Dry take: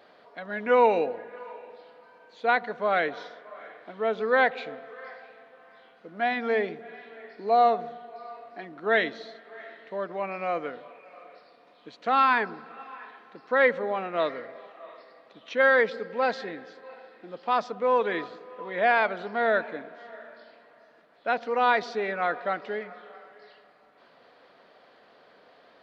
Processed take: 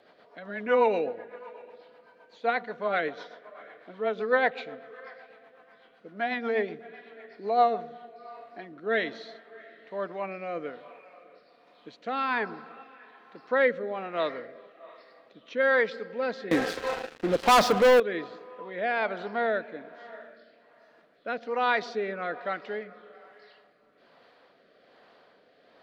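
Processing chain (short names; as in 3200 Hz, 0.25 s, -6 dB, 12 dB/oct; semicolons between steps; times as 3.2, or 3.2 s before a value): rotary speaker horn 8 Hz, later 1.2 Hz, at 7.39; 16.51–18 sample leveller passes 5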